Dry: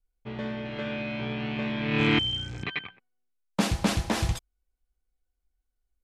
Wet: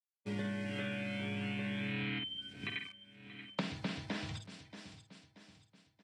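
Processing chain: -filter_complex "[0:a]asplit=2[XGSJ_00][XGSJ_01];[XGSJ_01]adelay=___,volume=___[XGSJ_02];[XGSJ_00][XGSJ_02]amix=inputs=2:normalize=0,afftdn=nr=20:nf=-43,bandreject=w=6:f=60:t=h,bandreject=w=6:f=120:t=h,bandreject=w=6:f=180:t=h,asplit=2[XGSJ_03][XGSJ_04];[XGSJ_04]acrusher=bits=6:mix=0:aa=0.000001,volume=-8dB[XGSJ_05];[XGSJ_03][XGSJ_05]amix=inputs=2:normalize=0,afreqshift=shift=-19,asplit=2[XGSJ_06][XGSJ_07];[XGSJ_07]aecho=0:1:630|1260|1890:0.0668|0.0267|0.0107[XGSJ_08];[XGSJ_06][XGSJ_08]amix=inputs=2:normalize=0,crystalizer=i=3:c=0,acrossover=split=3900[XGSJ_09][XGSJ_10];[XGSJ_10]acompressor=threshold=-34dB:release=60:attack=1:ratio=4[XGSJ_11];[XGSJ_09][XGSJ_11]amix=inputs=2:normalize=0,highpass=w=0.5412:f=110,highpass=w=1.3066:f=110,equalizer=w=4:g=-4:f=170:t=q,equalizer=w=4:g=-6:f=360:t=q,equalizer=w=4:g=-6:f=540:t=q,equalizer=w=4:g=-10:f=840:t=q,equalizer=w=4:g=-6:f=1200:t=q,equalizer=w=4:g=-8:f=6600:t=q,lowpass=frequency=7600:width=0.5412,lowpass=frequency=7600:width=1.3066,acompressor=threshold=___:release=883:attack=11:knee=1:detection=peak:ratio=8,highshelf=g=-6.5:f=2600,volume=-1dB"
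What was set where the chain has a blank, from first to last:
49, -6dB, -32dB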